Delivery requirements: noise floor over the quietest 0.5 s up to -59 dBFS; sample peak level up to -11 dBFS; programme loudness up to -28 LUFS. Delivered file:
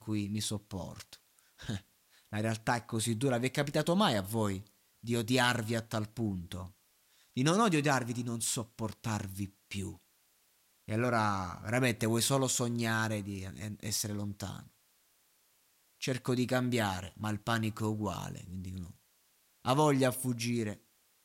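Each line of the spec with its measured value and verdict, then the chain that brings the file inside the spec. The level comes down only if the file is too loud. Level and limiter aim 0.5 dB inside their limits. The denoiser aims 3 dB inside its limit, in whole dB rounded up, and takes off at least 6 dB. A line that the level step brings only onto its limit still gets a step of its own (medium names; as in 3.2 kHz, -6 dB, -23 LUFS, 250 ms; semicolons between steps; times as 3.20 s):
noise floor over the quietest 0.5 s -70 dBFS: pass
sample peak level -14.0 dBFS: pass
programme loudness -33.0 LUFS: pass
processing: none needed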